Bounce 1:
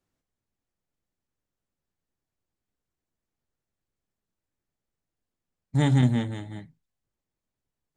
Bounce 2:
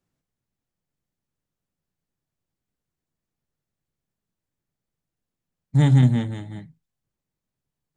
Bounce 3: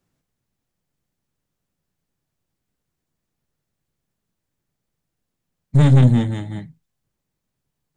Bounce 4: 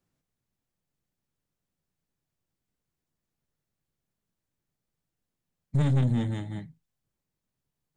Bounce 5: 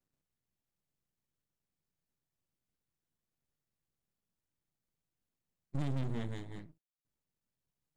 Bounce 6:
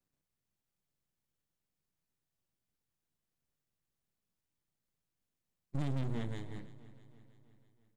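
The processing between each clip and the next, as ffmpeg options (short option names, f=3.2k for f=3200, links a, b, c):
-af "equalizer=f=150:t=o:w=0.91:g=7"
-af "aeval=exprs='(tanh(5.01*val(0)+0.4)-tanh(0.4))/5.01':c=same,volume=7.5dB"
-af "alimiter=limit=-11dB:level=0:latency=1:release=76,volume=-6.5dB"
-af "aeval=exprs='max(val(0),0)':c=same,volume=-4.5dB"
-af "aecho=1:1:325|650|975|1300|1625:0.141|0.0777|0.0427|0.0235|0.0129"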